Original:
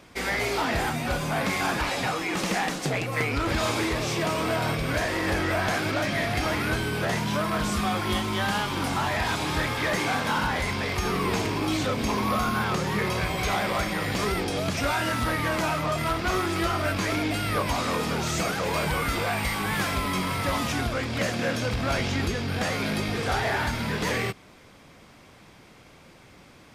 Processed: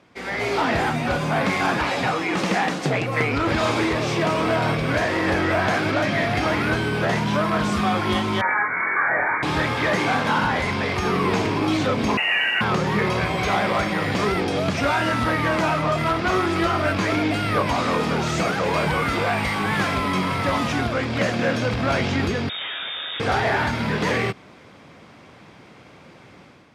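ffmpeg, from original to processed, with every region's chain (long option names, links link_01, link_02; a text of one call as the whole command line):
ffmpeg -i in.wav -filter_complex "[0:a]asettb=1/sr,asplit=3[link_01][link_02][link_03];[link_01]atrim=end=8.414[link_04];[link_02]atrim=start=8.41:end=9.43,asetpts=PTS-STARTPTS,afade=type=in:duration=0.004:curve=qsin,afade=type=out:start_time=1.016:duration=0.004:curve=qsin,highpass=250,asplit=2[link_05][link_06];[link_06]adelay=25,volume=-3.5dB[link_07];[link_05][link_07]amix=inputs=2:normalize=0,atrim=end_sample=44982,lowpass=frequency=2100:width_type=q:width=0.5098,lowpass=frequency=2100:width_type=q:width=0.6013,lowpass=frequency=2100:width_type=q:width=0.9,lowpass=frequency=2100:width_type=q:width=2.563,afreqshift=-2500[link_08];[link_03]atrim=start=9.426[link_09];[link_04][link_08]acrossfade=duration=0.004:curve1=hsin:curve2=qsin[link_10];[link_10][link_09]acrossfade=duration=0.004:curve1=qsin:curve2=hsin,asettb=1/sr,asplit=3[link_11][link_12][link_13];[link_11]atrim=end=12.174[link_14];[link_12]atrim=start=12.17:end=12.61,asetpts=PTS-STARTPTS,afade=type=in:duration=0.004:curve=qsin,afade=type=out:start_time=0.436:duration=0.004:curve=qsin,lowpass=frequency=2600:width_type=q:width=0.5098,lowpass=frequency=2600:width_type=q:width=0.6013,lowpass=frequency=2600:width_type=q:width=0.9,lowpass=frequency=2600:width_type=q:width=2.563,afreqshift=-3000,acrusher=bits=8:dc=4:mix=0:aa=0.000001[link_15];[link_13]atrim=start=12.606[link_16];[link_14][link_15]acrossfade=duration=0.004:curve1=hsin:curve2=qsin[link_17];[link_17][link_16]acrossfade=duration=0.004:curve1=qsin:curve2=hsin,asettb=1/sr,asplit=3[link_18][link_19][link_20];[link_18]atrim=end=22.494[link_21];[link_19]atrim=start=22.49:end=23.2,asetpts=PTS-STARTPTS,afade=type=in:duration=0.004:curve=qsin,afade=type=out:start_time=0.706:duration=0.004:curve=qsin,bandreject=frequency=2700:width=18,volume=31dB,asoftclip=hard,volume=-31dB,lowpass=frequency=3200:width_type=q:width=0.5098,lowpass=frequency=3200:width_type=q:width=0.6013,lowpass=frequency=3200:width_type=q:width=0.9,lowpass=frequency=3200:width_type=q:width=2.563,afreqshift=-3800[link_22];[link_20]atrim=start=23.196[link_23];[link_21][link_22]acrossfade=duration=0.004:curve1=hsin:curve2=qsin[link_24];[link_24][link_23]acrossfade=duration=0.004:curve1=qsin:curve2=hsin,highpass=94,aemphasis=mode=reproduction:type=50fm,dynaudnorm=framelen=110:gausssize=7:maxgain=9dB,volume=-3.5dB" out.wav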